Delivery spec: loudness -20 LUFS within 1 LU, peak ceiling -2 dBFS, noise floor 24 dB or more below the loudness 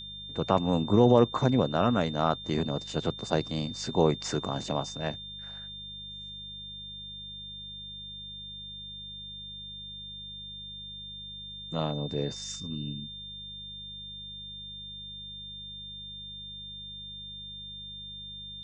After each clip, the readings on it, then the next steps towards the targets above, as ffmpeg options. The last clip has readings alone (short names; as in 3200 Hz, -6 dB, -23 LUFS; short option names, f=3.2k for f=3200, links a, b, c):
hum 50 Hz; harmonics up to 200 Hz; hum level -49 dBFS; steady tone 3600 Hz; tone level -40 dBFS; loudness -32.0 LUFS; peak -8.0 dBFS; loudness target -20.0 LUFS
-> -af "bandreject=f=50:t=h:w=4,bandreject=f=100:t=h:w=4,bandreject=f=150:t=h:w=4,bandreject=f=200:t=h:w=4"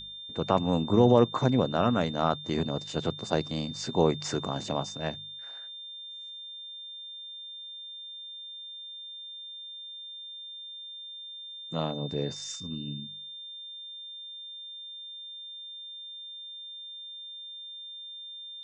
hum none; steady tone 3600 Hz; tone level -40 dBFS
-> -af "bandreject=f=3.6k:w=30"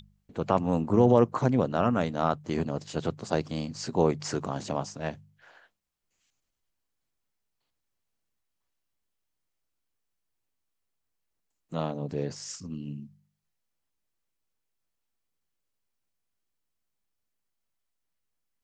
steady tone none; loudness -28.5 LUFS; peak -8.0 dBFS; loudness target -20.0 LUFS
-> -af "volume=8.5dB,alimiter=limit=-2dB:level=0:latency=1"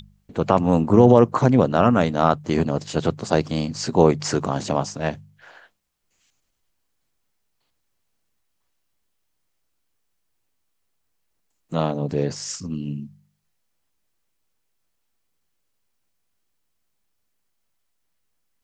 loudness -20.5 LUFS; peak -2.0 dBFS; noise floor -73 dBFS